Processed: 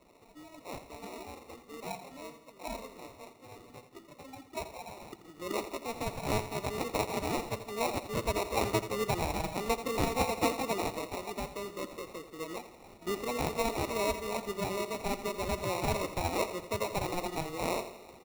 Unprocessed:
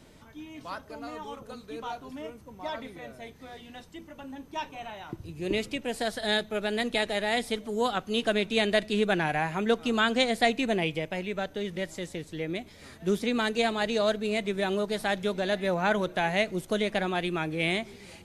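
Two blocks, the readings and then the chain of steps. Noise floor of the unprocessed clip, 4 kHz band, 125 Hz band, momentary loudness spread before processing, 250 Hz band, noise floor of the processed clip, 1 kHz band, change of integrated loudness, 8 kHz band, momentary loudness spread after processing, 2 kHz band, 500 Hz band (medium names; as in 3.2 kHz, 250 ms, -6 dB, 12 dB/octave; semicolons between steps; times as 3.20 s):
-52 dBFS, -9.0 dB, -2.0 dB, 17 LU, -7.5 dB, -57 dBFS, -2.5 dB, -6.0 dB, +2.5 dB, 17 LU, -10.0 dB, -5.5 dB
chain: coarse spectral quantiser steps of 30 dB; high-pass 340 Hz 12 dB/octave; sample-rate reducer 1.6 kHz, jitter 0%; feedback delay 84 ms, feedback 52%, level -12 dB; trim -3.5 dB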